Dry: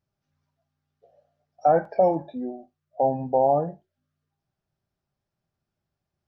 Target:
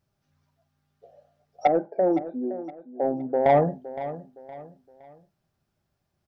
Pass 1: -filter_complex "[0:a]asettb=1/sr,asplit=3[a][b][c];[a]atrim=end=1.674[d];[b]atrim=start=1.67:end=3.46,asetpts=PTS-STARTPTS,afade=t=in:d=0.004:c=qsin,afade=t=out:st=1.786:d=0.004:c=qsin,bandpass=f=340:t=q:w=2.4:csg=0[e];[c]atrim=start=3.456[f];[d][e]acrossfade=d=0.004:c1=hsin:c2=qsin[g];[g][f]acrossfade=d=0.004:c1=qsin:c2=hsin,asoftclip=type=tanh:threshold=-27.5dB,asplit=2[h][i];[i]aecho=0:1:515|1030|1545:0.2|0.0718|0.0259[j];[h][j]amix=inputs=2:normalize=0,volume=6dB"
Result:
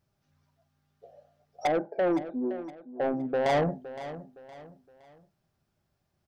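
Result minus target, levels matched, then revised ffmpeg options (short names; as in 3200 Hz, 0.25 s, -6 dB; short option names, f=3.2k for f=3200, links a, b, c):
soft clip: distortion +8 dB
-filter_complex "[0:a]asettb=1/sr,asplit=3[a][b][c];[a]atrim=end=1.674[d];[b]atrim=start=1.67:end=3.46,asetpts=PTS-STARTPTS,afade=t=in:d=0.004:c=qsin,afade=t=out:st=1.786:d=0.004:c=qsin,bandpass=f=340:t=q:w=2.4:csg=0[e];[c]atrim=start=3.456[f];[d][e]acrossfade=d=0.004:c1=hsin:c2=qsin[g];[g][f]acrossfade=d=0.004:c1=qsin:c2=hsin,asoftclip=type=tanh:threshold=-17dB,asplit=2[h][i];[i]aecho=0:1:515|1030|1545:0.2|0.0718|0.0259[j];[h][j]amix=inputs=2:normalize=0,volume=6dB"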